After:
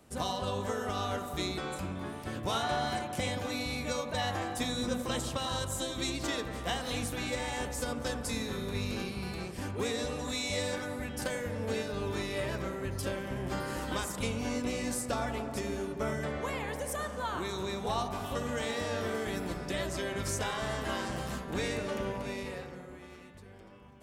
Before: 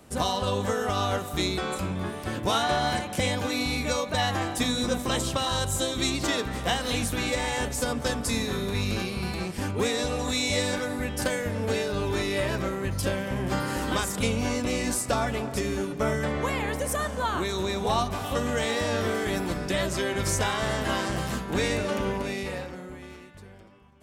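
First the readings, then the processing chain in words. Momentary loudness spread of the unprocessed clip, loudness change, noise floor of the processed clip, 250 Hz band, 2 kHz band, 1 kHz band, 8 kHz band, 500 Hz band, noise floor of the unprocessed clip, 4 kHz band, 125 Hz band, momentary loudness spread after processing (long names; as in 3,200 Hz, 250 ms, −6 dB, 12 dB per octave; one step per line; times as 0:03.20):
4 LU, −7.0 dB, −48 dBFS, −7.0 dB, −7.0 dB, −6.5 dB, −7.5 dB, −6.5 dB, −41 dBFS, −7.5 dB, −7.5 dB, 5 LU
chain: reversed playback
upward compression, threshold −38 dBFS
reversed playback
delay with a low-pass on its return 90 ms, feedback 73%, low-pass 1,400 Hz, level −9.5 dB
level −7.5 dB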